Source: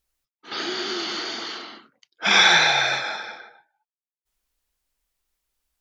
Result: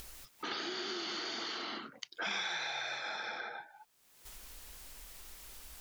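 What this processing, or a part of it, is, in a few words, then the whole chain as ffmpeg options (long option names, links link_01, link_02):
upward and downward compression: -filter_complex "[0:a]acompressor=mode=upward:threshold=-22dB:ratio=2.5,acompressor=threshold=-33dB:ratio=5,asettb=1/sr,asplit=3[link_01][link_02][link_03];[link_01]atrim=end=2.454[link_04];[link_02]atrim=start=2.45:end=3.05,asetpts=PTS-STARTPTS,afade=type=in:duration=0.004:curve=qsin,afade=type=out:start_time=0.596:duration=0.004:curve=qsin,highpass=frequency=270:poles=1[link_05];[link_03]atrim=start=3.046[link_06];[link_04][link_05]acrossfade=duration=0.004:curve1=hsin:curve2=qsin[link_07];[link_07][link_06]acrossfade=duration=0.004:curve1=qsin:curve2=hsin,volume=-4dB"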